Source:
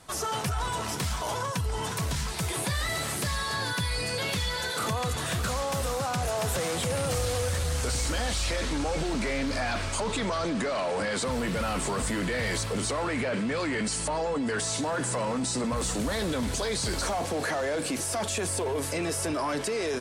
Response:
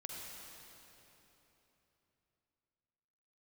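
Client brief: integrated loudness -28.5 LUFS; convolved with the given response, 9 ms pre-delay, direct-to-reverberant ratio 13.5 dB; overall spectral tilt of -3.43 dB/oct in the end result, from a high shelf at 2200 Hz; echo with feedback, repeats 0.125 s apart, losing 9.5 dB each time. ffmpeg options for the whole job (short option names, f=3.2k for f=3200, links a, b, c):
-filter_complex "[0:a]highshelf=f=2.2k:g=8,aecho=1:1:125|250|375|500:0.335|0.111|0.0365|0.012,asplit=2[a][b];[1:a]atrim=start_sample=2205,adelay=9[c];[b][c]afir=irnorm=-1:irlink=0,volume=-12dB[d];[a][d]amix=inputs=2:normalize=0,volume=-4dB"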